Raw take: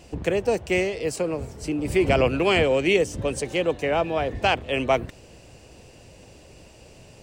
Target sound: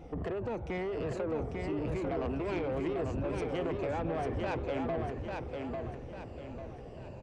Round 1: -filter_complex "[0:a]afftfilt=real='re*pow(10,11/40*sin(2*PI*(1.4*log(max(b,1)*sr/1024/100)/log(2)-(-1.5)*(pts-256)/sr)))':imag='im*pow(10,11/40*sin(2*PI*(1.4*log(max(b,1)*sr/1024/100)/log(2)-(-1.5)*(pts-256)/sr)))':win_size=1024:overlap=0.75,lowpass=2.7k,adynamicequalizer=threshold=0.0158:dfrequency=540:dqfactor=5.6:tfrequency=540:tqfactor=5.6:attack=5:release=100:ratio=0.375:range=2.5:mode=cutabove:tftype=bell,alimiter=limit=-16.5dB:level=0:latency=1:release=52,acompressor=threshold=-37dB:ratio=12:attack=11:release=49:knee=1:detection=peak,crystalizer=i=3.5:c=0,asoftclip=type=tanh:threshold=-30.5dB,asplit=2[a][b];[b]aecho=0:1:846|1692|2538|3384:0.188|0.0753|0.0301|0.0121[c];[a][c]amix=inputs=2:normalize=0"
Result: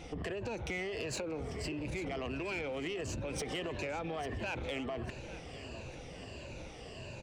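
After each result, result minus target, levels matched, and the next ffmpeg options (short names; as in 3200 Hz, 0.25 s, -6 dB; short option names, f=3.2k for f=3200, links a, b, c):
2000 Hz band +7.0 dB; echo-to-direct -10.5 dB; compressor: peak gain reduction +5.5 dB
-filter_complex "[0:a]afftfilt=real='re*pow(10,11/40*sin(2*PI*(1.4*log(max(b,1)*sr/1024/100)/log(2)-(-1.5)*(pts-256)/sr)))':imag='im*pow(10,11/40*sin(2*PI*(1.4*log(max(b,1)*sr/1024/100)/log(2)-(-1.5)*(pts-256)/sr)))':win_size=1024:overlap=0.75,lowpass=990,adynamicequalizer=threshold=0.0158:dfrequency=540:dqfactor=5.6:tfrequency=540:tqfactor=5.6:attack=5:release=100:ratio=0.375:range=2.5:mode=cutabove:tftype=bell,alimiter=limit=-16.5dB:level=0:latency=1:release=52,acompressor=threshold=-37dB:ratio=12:attack=11:release=49:knee=1:detection=peak,crystalizer=i=3.5:c=0,asoftclip=type=tanh:threshold=-30.5dB,asplit=2[a][b];[b]aecho=0:1:846|1692|2538|3384:0.188|0.0753|0.0301|0.0121[c];[a][c]amix=inputs=2:normalize=0"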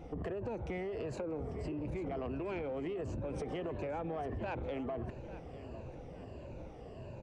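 echo-to-direct -10.5 dB; compressor: peak gain reduction +6 dB
-filter_complex "[0:a]afftfilt=real='re*pow(10,11/40*sin(2*PI*(1.4*log(max(b,1)*sr/1024/100)/log(2)-(-1.5)*(pts-256)/sr)))':imag='im*pow(10,11/40*sin(2*PI*(1.4*log(max(b,1)*sr/1024/100)/log(2)-(-1.5)*(pts-256)/sr)))':win_size=1024:overlap=0.75,lowpass=990,adynamicequalizer=threshold=0.0158:dfrequency=540:dqfactor=5.6:tfrequency=540:tqfactor=5.6:attack=5:release=100:ratio=0.375:range=2.5:mode=cutabove:tftype=bell,alimiter=limit=-16.5dB:level=0:latency=1:release=52,acompressor=threshold=-37dB:ratio=12:attack=11:release=49:knee=1:detection=peak,crystalizer=i=3.5:c=0,asoftclip=type=tanh:threshold=-30.5dB,asplit=2[a][b];[b]aecho=0:1:846|1692|2538|3384|4230:0.631|0.252|0.101|0.0404|0.0162[c];[a][c]amix=inputs=2:normalize=0"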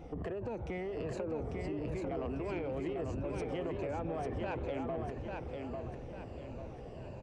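compressor: peak gain reduction +6 dB
-filter_complex "[0:a]afftfilt=real='re*pow(10,11/40*sin(2*PI*(1.4*log(max(b,1)*sr/1024/100)/log(2)-(-1.5)*(pts-256)/sr)))':imag='im*pow(10,11/40*sin(2*PI*(1.4*log(max(b,1)*sr/1024/100)/log(2)-(-1.5)*(pts-256)/sr)))':win_size=1024:overlap=0.75,lowpass=990,adynamicequalizer=threshold=0.0158:dfrequency=540:dqfactor=5.6:tfrequency=540:tqfactor=5.6:attack=5:release=100:ratio=0.375:range=2.5:mode=cutabove:tftype=bell,alimiter=limit=-16.5dB:level=0:latency=1:release=52,acompressor=threshold=-30.5dB:ratio=12:attack=11:release=49:knee=1:detection=peak,crystalizer=i=3.5:c=0,asoftclip=type=tanh:threshold=-30.5dB,asplit=2[a][b];[b]aecho=0:1:846|1692|2538|3384|4230:0.631|0.252|0.101|0.0404|0.0162[c];[a][c]amix=inputs=2:normalize=0"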